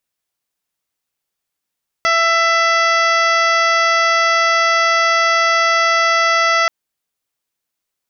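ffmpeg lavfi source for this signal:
ffmpeg -f lavfi -i "aevalsrc='0.106*sin(2*PI*666*t)+0.188*sin(2*PI*1332*t)+0.15*sin(2*PI*1998*t)+0.0531*sin(2*PI*2664*t)+0.0473*sin(2*PI*3330*t)+0.015*sin(2*PI*3996*t)+0.0501*sin(2*PI*4662*t)+0.0355*sin(2*PI*5328*t)+0.0355*sin(2*PI*5994*t)':duration=4.63:sample_rate=44100" out.wav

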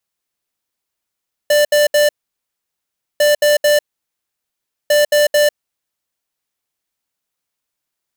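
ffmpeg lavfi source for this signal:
ffmpeg -f lavfi -i "aevalsrc='0.266*(2*lt(mod(591*t,1),0.5)-1)*clip(min(mod(mod(t,1.7),0.22),0.15-mod(mod(t,1.7),0.22))/0.005,0,1)*lt(mod(t,1.7),0.66)':duration=5.1:sample_rate=44100" out.wav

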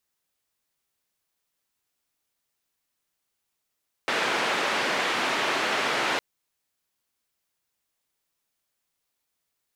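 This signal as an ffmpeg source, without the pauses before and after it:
ffmpeg -f lavfi -i "anoisesrc=color=white:duration=2.11:sample_rate=44100:seed=1,highpass=frequency=280,lowpass=frequency=2300,volume=-11.2dB" out.wav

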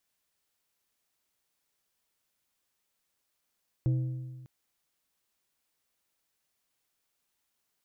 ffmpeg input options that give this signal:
ffmpeg -f lavfi -i "aevalsrc='0.0794*pow(10,-3*t/1.5)*sin(2*PI*128*t)+0.0211*pow(10,-3*t/1.139)*sin(2*PI*320*t)+0.00562*pow(10,-3*t/0.99)*sin(2*PI*512*t)+0.0015*pow(10,-3*t/0.926)*sin(2*PI*640*t)+0.000398*pow(10,-3*t/0.855)*sin(2*PI*832*t)':duration=0.6:sample_rate=44100" out.wav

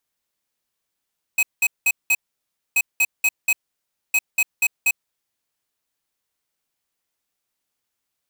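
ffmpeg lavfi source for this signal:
ffmpeg -f lavfi -i "aevalsrc='0.141*(2*lt(mod(2540*t,1),0.5)-1)*clip(min(mod(mod(t,1.38),0.24),0.05-mod(mod(t,1.38),0.24))/0.005,0,1)*lt(mod(t,1.38),0.96)':duration=4.14:sample_rate=44100" out.wav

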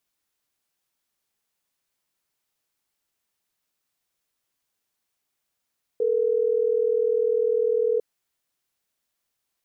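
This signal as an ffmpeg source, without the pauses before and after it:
ffmpeg -f lavfi -i "aevalsrc='0.0794*(sin(2*PI*440*t)+sin(2*PI*480*t))*clip(min(mod(t,6),2-mod(t,6))/0.005,0,1)':duration=3.12:sample_rate=44100" out.wav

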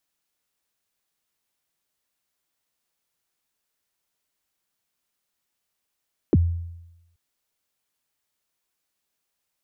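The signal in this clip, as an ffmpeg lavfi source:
ffmpeg -f lavfi -i "aevalsrc='0.266*pow(10,-3*t/0.94)*sin(2*PI*(440*0.034/log(85/440)*(exp(log(85/440)*min(t,0.034)/0.034)-1)+85*max(t-0.034,0)))':duration=0.83:sample_rate=44100" out.wav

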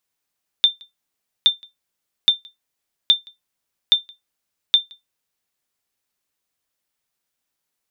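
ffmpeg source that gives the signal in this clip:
ffmpeg -f lavfi -i "aevalsrc='0.596*(sin(2*PI*3580*mod(t,0.82))*exp(-6.91*mod(t,0.82)/0.16)+0.0355*sin(2*PI*3580*max(mod(t,0.82)-0.17,0))*exp(-6.91*max(mod(t,0.82)-0.17,0)/0.16))':duration=4.92:sample_rate=44100" out.wav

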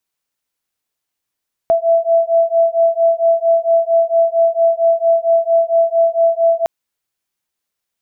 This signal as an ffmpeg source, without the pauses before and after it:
ffmpeg -f lavfi -i "aevalsrc='0.211*(sin(2*PI*664*t)+sin(2*PI*668.4*t))':duration=4.96:sample_rate=44100" out.wav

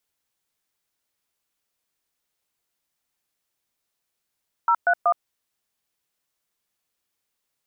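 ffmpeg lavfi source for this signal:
ffmpeg -f lavfi -i "aevalsrc='0.126*clip(min(mod(t,0.188),0.068-mod(t,0.188))/0.002,0,1)*(eq(floor(t/0.188),0)*(sin(2*PI*941*mod(t,0.188))+sin(2*PI*1336*mod(t,0.188)))+eq(floor(t/0.188),1)*(sin(2*PI*697*mod(t,0.188))+sin(2*PI*1477*mod(t,0.188)))+eq(floor(t/0.188),2)*(sin(2*PI*697*mod(t,0.188))+sin(2*PI*1209*mod(t,0.188))))':duration=0.564:sample_rate=44100" out.wav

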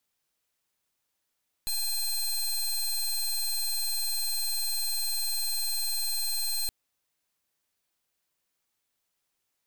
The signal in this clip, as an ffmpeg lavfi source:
ffmpeg -f lavfi -i "aevalsrc='0.0355*(2*lt(mod(4160*t,1),0.18)-1)':duration=5.02:sample_rate=44100" out.wav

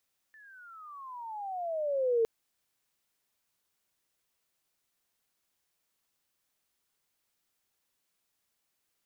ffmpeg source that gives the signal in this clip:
ffmpeg -f lavfi -i "aevalsrc='pow(10,(-22.5+30*(t/1.91-1))/20)*sin(2*PI*1780*1.91/(-24*log(2)/12)*(exp(-24*log(2)/12*t/1.91)-1))':duration=1.91:sample_rate=44100" out.wav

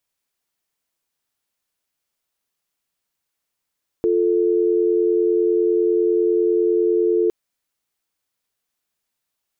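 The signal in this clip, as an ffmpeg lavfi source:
ffmpeg -f lavfi -i "aevalsrc='0.133*(sin(2*PI*350*t)+sin(2*PI*440*t))':duration=3.26:sample_rate=44100" out.wav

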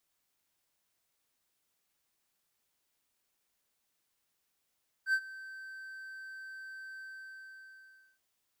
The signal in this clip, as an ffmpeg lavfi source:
ffmpeg -f lavfi -i "aevalsrc='0.0794*(1-4*abs(mod(1550*t+0.25,1)-0.5))':duration=3.13:sample_rate=44100,afade=type=in:duration=0.074,afade=type=out:start_time=0.074:duration=0.063:silence=0.106,afade=type=out:start_time=1.94:duration=1.19" out.wav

